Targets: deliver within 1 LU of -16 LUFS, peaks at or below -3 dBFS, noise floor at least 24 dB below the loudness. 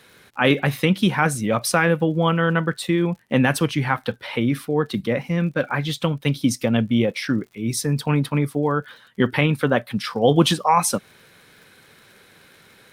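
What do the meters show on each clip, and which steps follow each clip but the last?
tick rate 52 per s; loudness -21.0 LUFS; peak level -4.5 dBFS; loudness target -16.0 LUFS
-> de-click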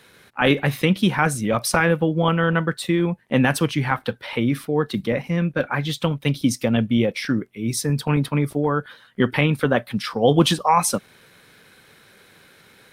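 tick rate 0.62 per s; loudness -21.5 LUFS; peak level -4.5 dBFS; loudness target -16.0 LUFS
-> trim +5.5 dB; peak limiter -3 dBFS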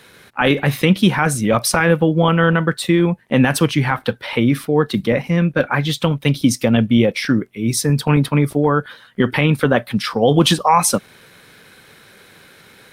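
loudness -16.5 LUFS; peak level -3.0 dBFS; noise floor -47 dBFS

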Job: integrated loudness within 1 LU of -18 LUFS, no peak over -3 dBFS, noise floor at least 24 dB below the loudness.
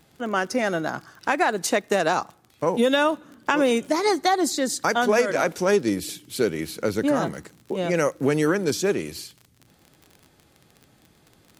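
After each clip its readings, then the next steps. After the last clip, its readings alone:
tick rate 34 per s; loudness -23.5 LUFS; peak level -5.0 dBFS; loudness target -18.0 LUFS
-> de-click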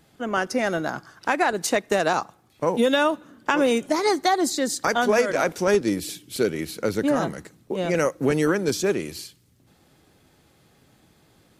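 tick rate 0 per s; loudness -23.5 LUFS; peak level -5.0 dBFS; loudness target -18.0 LUFS
-> trim +5.5 dB; peak limiter -3 dBFS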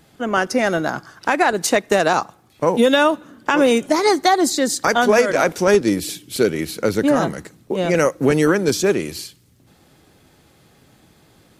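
loudness -18.0 LUFS; peak level -3.0 dBFS; noise floor -54 dBFS

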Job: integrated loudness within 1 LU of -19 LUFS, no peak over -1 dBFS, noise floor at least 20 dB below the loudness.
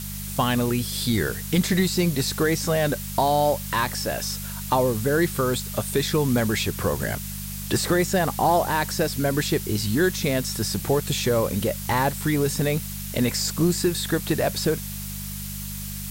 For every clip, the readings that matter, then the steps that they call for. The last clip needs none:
hum 50 Hz; highest harmonic 200 Hz; hum level -33 dBFS; noise floor -33 dBFS; noise floor target -44 dBFS; loudness -24.0 LUFS; peak level -9.5 dBFS; loudness target -19.0 LUFS
-> de-hum 50 Hz, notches 4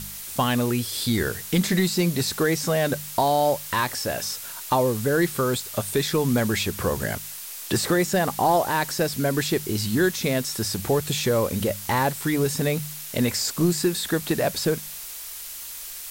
hum not found; noise floor -37 dBFS; noise floor target -44 dBFS
-> noise reduction 7 dB, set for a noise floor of -37 dBFS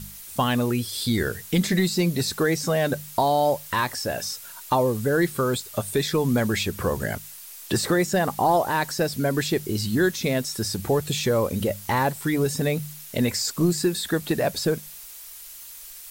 noise floor -42 dBFS; noise floor target -44 dBFS
-> noise reduction 6 dB, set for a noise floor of -42 dBFS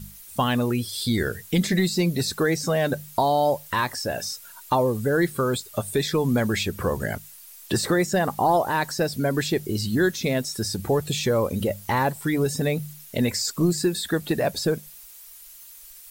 noise floor -46 dBFS; loudness -24.5 LUFS; peak level -10.0 dBFS; loudness target -19.0 LUFS
-> trim +5.5 dB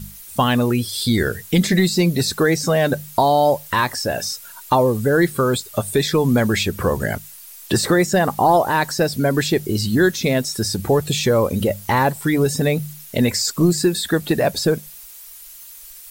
loudness -19.0 LUFS; peak level -4.5 dBFS; noise floor -40 dBFS

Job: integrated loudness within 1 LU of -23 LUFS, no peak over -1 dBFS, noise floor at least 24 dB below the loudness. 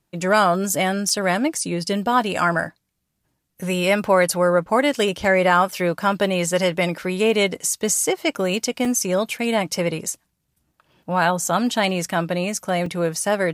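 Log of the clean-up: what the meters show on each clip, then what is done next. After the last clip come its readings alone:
dropouts 4; longest dropout 3.3 ms; loudness -20.5 LUFS; peak level -3.5 dBFS; loudness target -23.0 LUFS
-> interpolate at 1.09/5.71/8.85/12.86 s, 3.3 ms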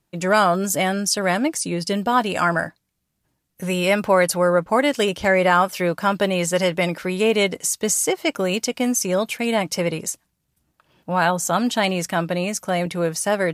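dropouts 0; loudness -20.5 LUFS; peak level -3.5 dBFS; loudness target -23.0 LUFS
-> trim -2.5 dB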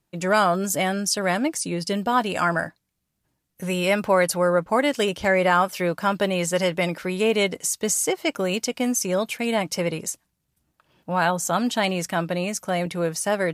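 loudness -23.0 LUFS; peak level -6.0 dBFS; noise floor -77 dBFS

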